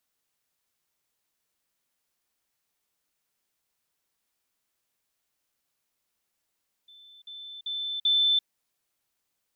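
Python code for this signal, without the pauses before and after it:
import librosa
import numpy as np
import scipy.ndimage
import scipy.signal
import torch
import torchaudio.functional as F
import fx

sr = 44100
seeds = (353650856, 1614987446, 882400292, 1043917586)

y = fx.level_ladder(sr, hz=3530.0, from_db=-49.5, step_db=10.0, steps=4, dwell_s=0.34, gap_s=0.05)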